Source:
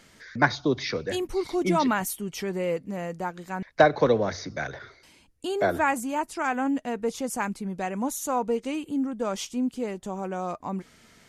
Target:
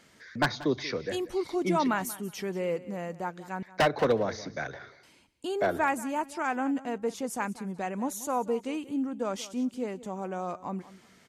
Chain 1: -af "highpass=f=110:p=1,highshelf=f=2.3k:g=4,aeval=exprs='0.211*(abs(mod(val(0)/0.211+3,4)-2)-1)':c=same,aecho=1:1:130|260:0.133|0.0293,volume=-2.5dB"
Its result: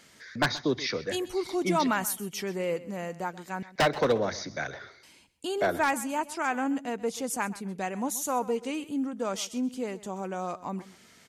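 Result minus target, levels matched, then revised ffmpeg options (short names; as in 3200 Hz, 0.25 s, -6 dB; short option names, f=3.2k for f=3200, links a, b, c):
echo 55 ms early; 4000 Hz band +3.5 dB
-af "highpass=f=110:p=1,highshelf=f=2.3k:g=-2.5,aeval=exprs='0.211*(abs(mod(val(0)/0.211+3,4)-2)-1)':c=same,aecho=1:1:185|370:0.133|0.0293,volume=-2.5dB"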